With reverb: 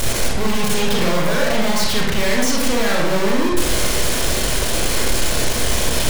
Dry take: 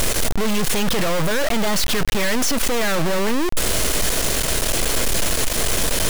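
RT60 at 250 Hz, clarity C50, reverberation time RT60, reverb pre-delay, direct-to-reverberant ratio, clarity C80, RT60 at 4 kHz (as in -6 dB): 0.95 s, 0.5 dB, 0.95 s, 26 ms, -2.5 dB, 4.0 dB, 0.65 s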